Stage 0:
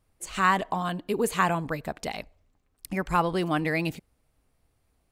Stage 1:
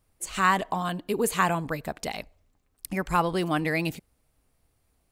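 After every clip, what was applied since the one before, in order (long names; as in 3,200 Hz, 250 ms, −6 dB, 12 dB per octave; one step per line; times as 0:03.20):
high-shelf EQ 6,100 Hz +5.5 dB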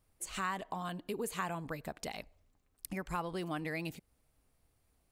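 downward compressor 2 to 1, threshold −37 dBFS, peak gain reduction 11.5 dB
level −4 dB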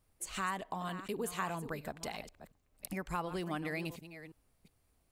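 delay that plays each chunk backwards 360 ms, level −12 dB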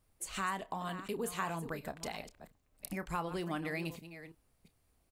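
double-tracking delay 30 ms −13.5 dB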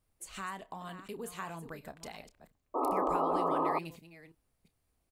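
sound drawn into the spectrogram noise, 0:02.74–0:03.79, 250–1,300 Hz −26 dBFS
level −4.5 dB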